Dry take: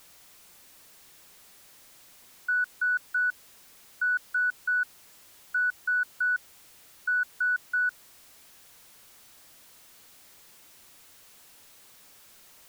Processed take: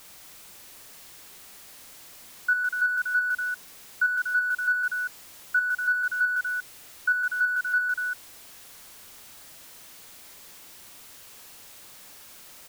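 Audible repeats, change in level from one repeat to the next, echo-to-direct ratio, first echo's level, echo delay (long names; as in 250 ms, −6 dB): 2, repeats not evenly spaced, −3.0 dB, −4.5 dB, 47 ms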